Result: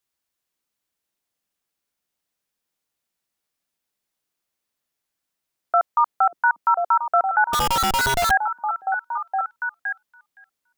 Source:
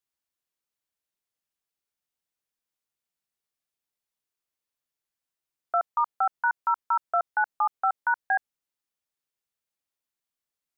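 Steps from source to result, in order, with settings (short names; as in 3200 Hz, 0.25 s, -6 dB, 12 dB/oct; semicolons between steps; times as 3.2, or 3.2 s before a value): delay with a stepping band-pass 0.517 s, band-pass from 240 Hz, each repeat 1.4 oct, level 0 dB; 7.53–8.31 Schmitt trigger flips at -38 dBFS; gain +6.5 dB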